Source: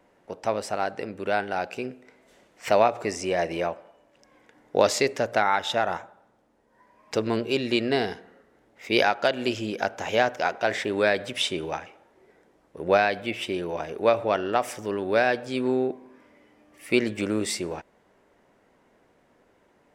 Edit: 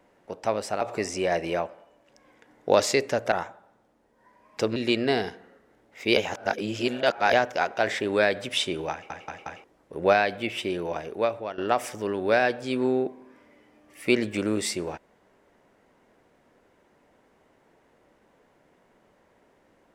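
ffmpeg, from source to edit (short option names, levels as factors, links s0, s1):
-filter_complex "[0:a]asplit=11[s0][s1][s2][s3][s4][s5][s6][s7][s8][s9][s10];[s0]atrim=end=0.812[s11];[s1]atrim=start=2.878:end=5.392[s12];[s2]atrim=start=5.858:end=7.302[s13];[s3]atrim=start=7.598:end=9.012[s14];[s4]atrim=start=9.008:end=10.172,asetpts=PTS-STARTPTS,areverse[s15];[s5]atrim=start=10.168:end=11.942[s16];[s6]atrim=start=11.758:end=11.942[s17];[s7]atrim=start=11.758:end=11.942[s18];[s8]atrim=start=11.758:end=11.942[s19];[s9]atrim=start=12.478:end=14.42,asetpts=PTS-STARTPTS,afade=t=out:st=1.282:d=0.66:silence=0.188365[s20];[s10]atrim=start=14.42,asetpts=PTS-STARTPTS,afade=t=in:d=0.004:c=hsin:silence=0.188365[s21];[s11][s12]acrossfade=d=0.004:c1=hsin:c2=hsin[s22];[s22][s13]acrossfade=d=0.004:c1=hsin:c2=hsin[s23];[s23][s14]acrossfade=d=0.004:c1=hsin:c2=hsin[s24];[s24][s15]acrossfade=d=0.004:c1=hsin:c2=hsin[s25];[s25][s16]acrossfade=d=0.004:c1=hsin:c2=hsin[s26];[s26][s17]acrossfade=d=0.004:c1=hsin:c2=hsin[s27];[s27][s18]acrossfade=d=0.004:c1=hsin:c2=hsin[s28];[s28][s19]acrossfade=d=0.004:c1=hsin:c2=hsin[s29];[s20][s21]concat=n=2:v=0:a=1[s30];[s29][s30]acrossfade=d=0.004:c1=hsin:c2=hsin"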